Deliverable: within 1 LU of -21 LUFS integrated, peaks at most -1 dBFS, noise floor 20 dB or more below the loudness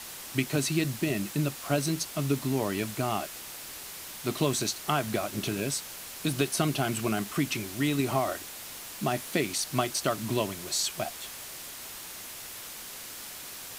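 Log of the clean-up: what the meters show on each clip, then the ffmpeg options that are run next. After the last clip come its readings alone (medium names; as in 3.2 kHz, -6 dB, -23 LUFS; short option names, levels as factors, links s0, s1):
noise floor -42 dBFS; noise floor target -51 dBFS; loudness -31.0 LUFS; peak level -11.5 dBFS; loudness target -21.0 LUFS
-> -af "afftdn=nr=9:nf=-42"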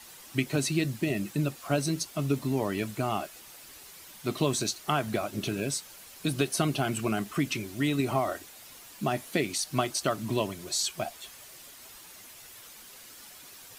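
noise floor -50 dBFS; loudness -30.0 LUFS; peak level -12.0 dBFS; loudness target -21.0 LUFS
-> -af "volume=2.82"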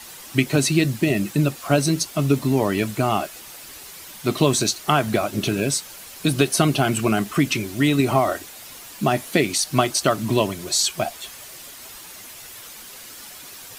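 loudness -21.0 LUFS; peak level -3.0 dBFS; noise floor -41 dBFS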